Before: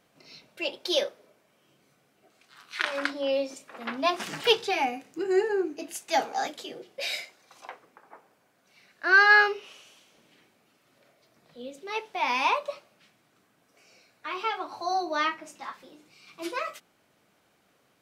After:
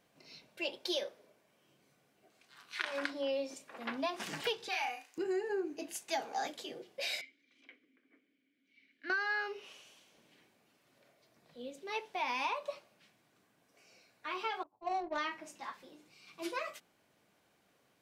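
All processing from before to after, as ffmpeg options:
-filter_complex "[0:a]asettb=1/sr,asplit=3[a][b][c];[a]atrim=end=4.684[d];[b]atrim=start=4.68:end=5.18,asetpts=PTS-STARTPTS,afade=t=in:d=0.004:c=qsin,afade=t=out:st=0.496:d=0.004:c=qsin,highpass=990,asplit=2[e][f];[f]adelay=37,volume=-2.5dB[g];[e][g]amix=inputs=2:normalize=0,atrim=end_sample=22050[h];[c]atrim=start=5.176[i];[d][h]acrossfade=d=0.004:c1=hsin:c2=qsin[j];[j][i]acrossfade=d=0.004:c1=qsin:c2=hsin,asettb=1/sr,asplit=3[k][l][m];[k]atrim=end=7.214[n];[l]atrim=start=7.21:end=9.1,asetpts=PTS-STARTPTS,afade=t=in:d=0.004:c=qsin,afade=t=out:st=1.886:d=0.004:c=qsin,acontrast=80,asplit=3[o][p][q];[o]bandpass=f=270:t=q:w=8,volume=0dB[r];[p]bandpass=f=2.29k:t=q:w=8,volume=-6dB[s];[q]bandpass=f=3.01k:t=q:w=8,volume=-9dB[t];[r][s][t]amix=inputs=3:normalize=0,equalizer=f=170:w=3.6:g=-6[u];[m]atrim=start=9.096[v];[n][u]acrossfade=d=0.004:c1=hsin:c2=qsin[w];[w][v]acrossfade=d=0.004:c1=qsin:c2=hsin,asettb=1/sr,asplit=3[x][y][z];[x]atrim=end=14.634[aa];[y]atrim=start=14.63:end=15.18,asetpts=PTS-STARTPTS,afade=t=in:d=0.004:c=qsin,afade=t=out:st=0.546:d=0.004:c=qsin,agate=range=-33dB:threshold=-30dB:ratio=3:release=100:detection=peak,adynamicsmooth=sensitivity=2:basefreq=620[ab];[z]atrim=start=15.176[ac];[aa][ab]acrossfade=d=0.004:c1=hsin:c2=qsin[ad];[ad][ac]acrossfade=d=0.004:c1=qsin:c2=hsin,bandreject=f=1.3k:w=14,acompressor=threshold=-26dB:ratio=16,volume=-5dB"

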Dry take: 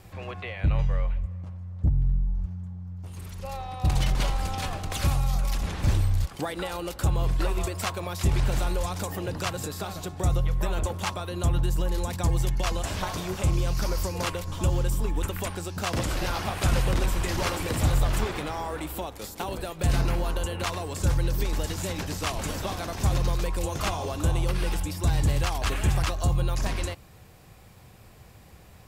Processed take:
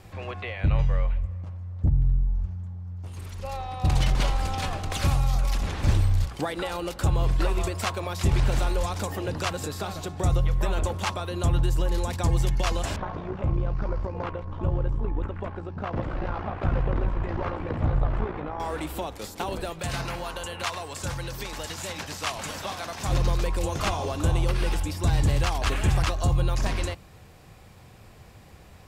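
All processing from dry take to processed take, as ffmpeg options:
-filter_complex "[0:a]asettb=1/sr,asplit=3[a][b][c];[a]atrim=end=12.964[d];[b]atrim=start=12.96:end=18.6,asetpts=PTS-STARTPTS,afade=t=in:d=0.004:c=qsin,afade=t=out:st=5.636:d=0.004:c=qsin,lowpass=1.4k,tremolo=f=58:d=0.571[e];[c]atrim=start=18.596[f];[d][e]acrossfade=d=0.004:c1=hsin:c2=qsin[g];[g][f]acrossfade=d=0.004:c1=qsin:c2=hsin,asettb=1/sr,asplit=3[h][i][j];[h]atrim=end=19.794[k];[i]atrim=start=19.79:end=23.09,asetpts=PTS-STARTPTS,afade=t=in:d=0.004:c=qsin,afade=t=out:st=3.296:d=0.004:c=qsin,highpass=f=260:p=1,equalizer=f=350:t=o:w=1.3:g=-7[l];[j]atrim=start=23.086[m];[k][l]acrossfade=d=0.004:c1=hsin:c2=qsin[n];[n][m]acrossfade=d=0.004:c1=qsin:c2=hsin,highshelf=f=11k:g=-10,bandreject=f=60:t=h:w=6,bandreject=f=120:t=h:w=6,bandreject=f=180:t=h:w=6,volume=2dB"

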